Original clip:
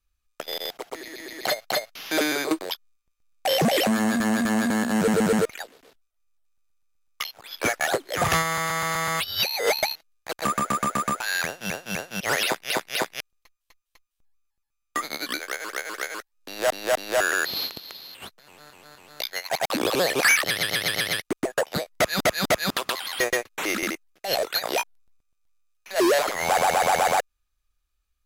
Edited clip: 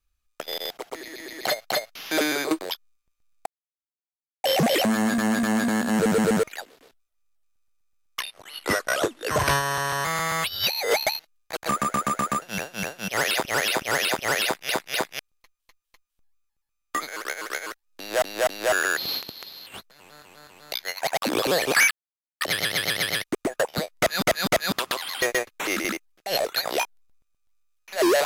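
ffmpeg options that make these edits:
-filter_complex "[0:a]asplit=10[s0][s1][s2][s3][s4][s5][s6][s7][s8][s9];[s0]atrim=end=3.46,asetpts=PTS-STARTPTS,afade=t=out:st=3.456:d=0.004:c=hsin,apad=pad_dur=0.98[s10];[s1]atrim=start=3.46:end=7.224,asetpts=PTS-STARTPTS,afade=t=in:d=0.004:c=hsin[s11];[s2]atrim=start=7.22:end=8.81,asetpts=PTS-STARTPTS,asetrate=37926,aresample=44100[s12];[s3]atrim=start=8.806:end=11.182[s13];[s4]atrim=start=11.538:end=12.572[s14];[s5]atrim=start=12.198:end=12.572[s15];[s6]atrim=start=12.198:end=12.572[s16];[s7]atrim=start=12.198:end=15.092[s17];[s8]atrim=start=15.558:end=20.39,asetpts=PTS-STARTPTS,afade=t=out:st=4.828:d=0.004:c=hsin,apad=pad_dur=0.5[s18];[s9]atrim=start=20.39,asetpts=PTS-STARTPTS,afade=t=in:d=0.004:c=hsin[s19];[s10][s11]concat=n=2:v=0:a=1[s20];[s20][s12]acrossfade=d=0.004:c1=hsin:c2=hsin[s21];[s21][s13]acrossfade=d=0.004:c1=hsin:c2=hsin[s22];[s22][s14]acrossfade=d=0.004:c1=hsin:c2=hsin[s23];[s23][s15]acrossfade=d=0.004:c1=hsin:c2=hsin[s24];[s24][s16]acrossfade=d=0.004:c1=hsin:c2=hsin[s25];[s25][s17]acrossfade=d=0.004:c1=hsin:c2=hsin[s26];[s18][s19]concat=n=2:v=0:a=1[s27];[s26][s27]acrossfade=d=0.004:c1=hsin:c2=hsin"

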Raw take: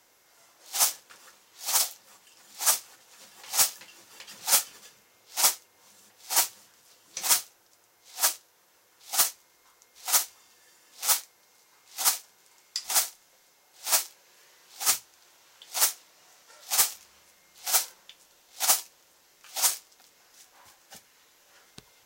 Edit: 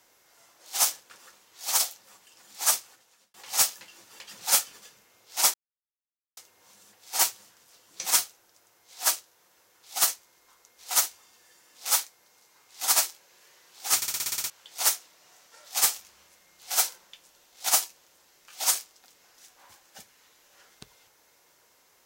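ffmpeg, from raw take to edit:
-filter_complex "[0:a]asplit=13[s0][s1][s2][s3][s4][s5][s6][s7][s8][s9][s10][s11][s12];[s0]atrim=end=3.34,asetpts=PTS-STARTPTS,afade=t=out:st=2.76:d=0.58[s13];[s1]atrim=start=3.34:end=5.54,asetpts=PTS-STARTPTS,afade=t=in:d=0.004:c=hsin,afade=t=out:st=2.196:d=0.004:c=hsin,apad=pad_dur=0.83[s14];[s2]atrim=start=5.54:end=12.122,asetpts=PTS-STARTPTS,afade=t=in:d=0.004:c=hsin[s15];[s3]atrim=start=13.908:end=14.982[s16];[s4]atrim=start=14.918:end=14.982[s17];[s5]atrim=start=14.918:end=14.982[s18];[s6]atrim=start=14.918:end=14.982[s19];[s7]atrim=start=14.918:end=14.982[s20];[s8]atrim=start=14.918:end=14.982[s21];[s9]atrim=start=14.918:end=14.982[s22];[s10]atrim=start=14.918:end=14.982[s23];[s11]atrim=start=14.918:end=14.982[s24];[s12]atrim=start=15.458[s25];[s13][s14][s15]concat=n=3:v=0:a=1[s26];[s26][s16]acrossfade=d=0.004:c1=hsin:c2=hsin[s27];[s27][s17]acrossfade=d=0.004:c1=hsin:c2=hsin[s28];[s28][s18]acrossfade=d=0.004:c1=hsin:c2=hsin[s29];[s29][s19]acrossfade=d=0.004:c1=hsin:c2=hsin[s30];[s30][s20]acrossfade=d=0.004:c1=hsin:c2=hsin[s31];[s31][s21]acrossfade=d=0.004:c1=hsin:c2=hsin[s32];[s32][s22]acrossfade=d=0.004:c1=hsin:c2=hsin[s33];[s33][s23]acrossfade=d=0.004:c1=hsin:c2=hsin[s34];[s34][s24]acrossfade=d=0.004:c1=hsin:c2=hsin[s35];[s35][s25]acrossfade=d=0.004:c1=hsin:c2=hsin"

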